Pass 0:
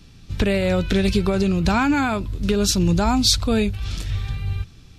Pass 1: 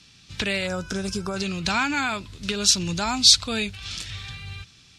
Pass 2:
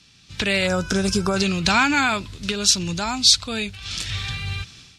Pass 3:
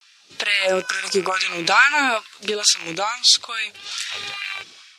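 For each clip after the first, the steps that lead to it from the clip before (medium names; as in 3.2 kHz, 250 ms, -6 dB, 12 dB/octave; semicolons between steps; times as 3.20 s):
frequency weighting ITU-R 468; time-frequency box 0.67–1.36 s, 1.7–4.8 kHz -15 dB; tone controls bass +12 dB, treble -5 dB; trim -4 dB
level rider gain up to 10 dB; trim -1 dB
rattle on loud lows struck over -26 dBFS, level -19 dBFS; vibrato 0.56 Hz 68 cents; LFO high-pass sine 2.3 Hz 340–1700 Hz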